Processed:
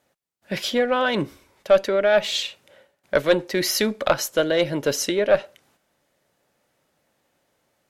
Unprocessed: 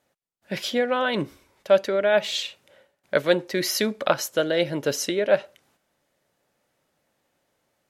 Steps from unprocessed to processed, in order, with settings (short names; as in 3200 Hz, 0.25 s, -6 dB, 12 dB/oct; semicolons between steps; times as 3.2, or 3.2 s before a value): one diode to ground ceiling -8 dBFS; gain +3 dB